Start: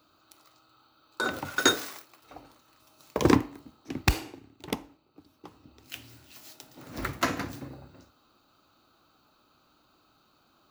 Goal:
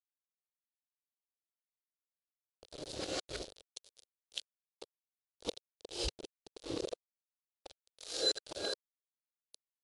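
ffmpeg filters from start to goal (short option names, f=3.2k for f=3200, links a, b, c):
-af "areverse,asetrate=48000,aresample=44100,acompressor=threshold=-32dB:ratio=10,aeval=exprs='val(0)*gte(abs(val(0)),0.0106)':c=same,equalizer=f=125:t=o:w=1:g=-8,equalizer=f=250:t=o:w=1:g=-9,equalizer=f=500:t=o:w=1:g=11,equalizer=f=1k:t=o:w=1:g=-10,equalizer=f=2k:t=o:w=1:g=-10,equalizer=f=4k:t=o:w=1:g=11,volume=-1.5dB" -ar 24000 -c:a libmp3lame -b:a 128k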